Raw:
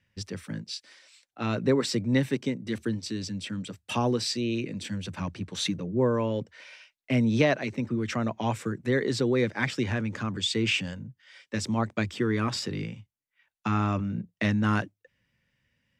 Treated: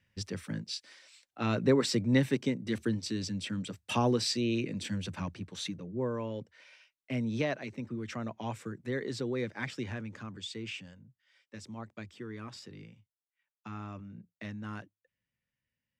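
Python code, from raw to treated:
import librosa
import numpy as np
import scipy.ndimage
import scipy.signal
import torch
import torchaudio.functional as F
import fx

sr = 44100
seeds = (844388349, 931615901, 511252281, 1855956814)

y = fx.gain(x, sr, db=fx.line((5.02, -1.5), (5.68, -9.0), (9.82, -9.0), (10.93, -16.0)))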